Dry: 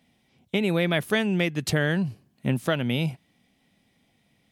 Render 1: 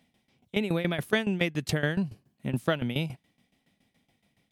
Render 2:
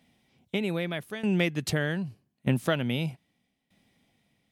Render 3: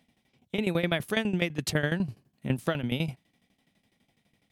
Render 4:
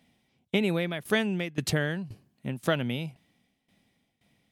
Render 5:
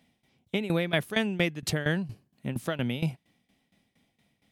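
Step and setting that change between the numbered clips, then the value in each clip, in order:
shaped tremolo, speed: 7.1, 0.81, 12, 1.9, 4.3 Hertz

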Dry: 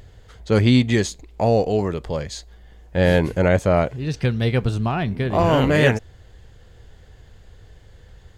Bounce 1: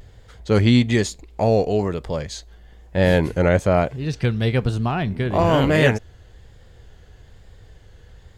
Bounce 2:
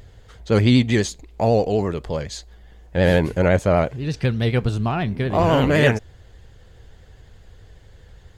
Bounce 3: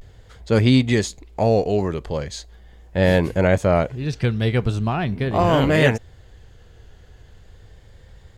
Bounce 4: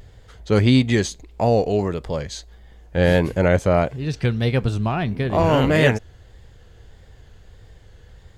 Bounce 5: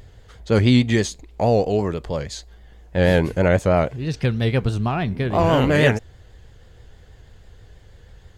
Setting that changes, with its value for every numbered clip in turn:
pitch vibrato, speed: 1.1, 12, 0.4, 1.6, 6.2 Hertz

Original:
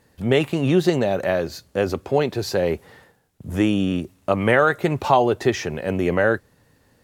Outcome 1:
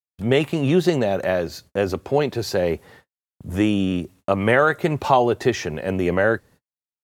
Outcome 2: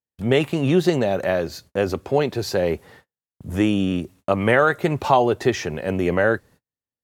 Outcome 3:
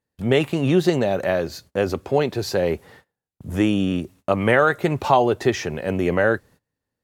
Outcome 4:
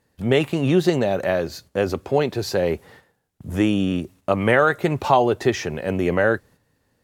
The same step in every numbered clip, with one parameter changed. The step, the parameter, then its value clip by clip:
noise gate, range: −55, −40, −24, −8 decibels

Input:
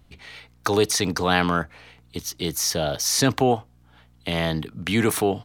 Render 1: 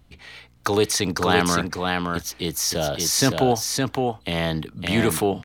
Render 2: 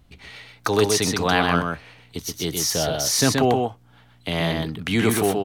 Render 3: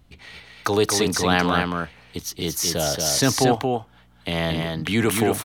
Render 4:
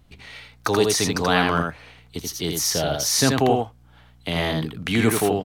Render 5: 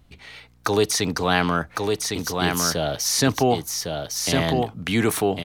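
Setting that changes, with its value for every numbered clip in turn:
single-tap delay, delay time: 563, 126, 228, 82, 1,106 milliseconds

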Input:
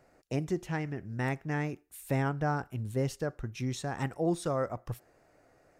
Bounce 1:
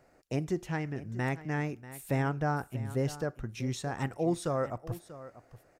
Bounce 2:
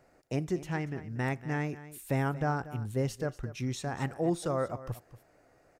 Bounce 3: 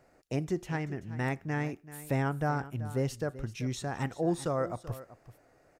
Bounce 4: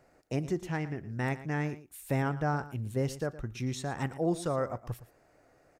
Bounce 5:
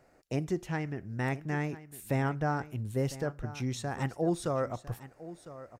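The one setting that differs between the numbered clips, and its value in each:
single-tap delay, delay time: 639, 235, 384, 115, 1,004 milliseconds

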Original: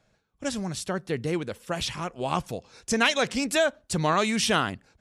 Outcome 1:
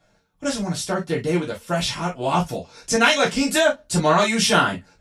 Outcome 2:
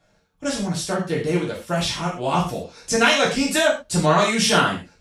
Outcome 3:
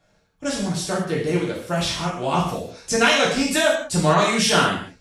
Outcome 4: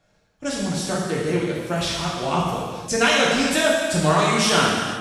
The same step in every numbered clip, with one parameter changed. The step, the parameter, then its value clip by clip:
reverb whose tail is shaped and stops, gate: 80, 150, 230, 540 milliseconds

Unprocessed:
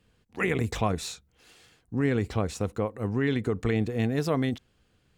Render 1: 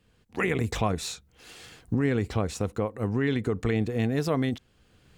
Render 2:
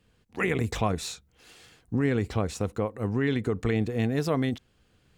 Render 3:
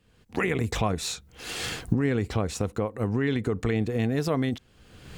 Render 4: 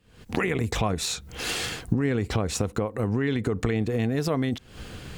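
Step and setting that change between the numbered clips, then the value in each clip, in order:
camcorder AGC, rising by: 14, 5.4, 36, 88 dB per second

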